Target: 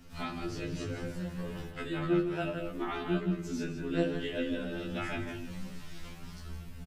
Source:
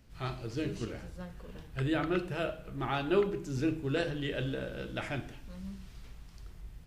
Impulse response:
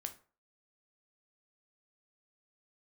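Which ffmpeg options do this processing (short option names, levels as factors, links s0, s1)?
-filter_complex "[0:a]asettb=1/sr,asplit=3[s0][s1][s2];[s0]atrim=end=1.704[s3];[s1]atrim=start=1.7:end=2.45,asetpts=PTS-STARTPTS,afade=t=in:d=0.004:c=qsin,afade=t=out:st=0.746:d=0.004:c=qsin,agate=range=0.0224:threshold=0.0282:ratio=3:detection=peak[s4];[s2]atrim=start=2.446[s5];[s3][s4]acrossfade=d=0.004:c1=hsin:c2=qsin[s6];[s6][s5]acrossfade=d=0.004:c1=qsin:c2=hsin,acrossover=split=250[s7][s8];[s8]acompressor=threshold=0.00501:ratio=2[s9];[s7][s9]amix=inputs=2:normalize=0,asplit=2[s10][s11];[s11]adelay=163.3,volume=0.447,highshelf=f=4000:g=-3.67[s12];[s10][s12]amix=inputs=2:normalize=0,asplit=2[s13][s14];[s14]acompressor=threshold=0.00891:ratio=6,volume=0.841[s15];[s13][s15]amix=inputs=2:normalize=0,flanger=delay=16:depth=4.9:speed=0.3,asplit=2[s16][s17];[1:a]atrim=start_sample=2205,asetrate=57330,aresample=44100[s18];[s17][s18]afir=irnorm=-1:irlink=0,volume=1.78[s19];[s16][s19]amix=inputs=2:normalize=0,afftfilt=real='re*2*eq(mod(b,4),0)':imag='im*2*eq(mod(b,4),0)':win_size=2048:overlap=0.75,volume=1.41"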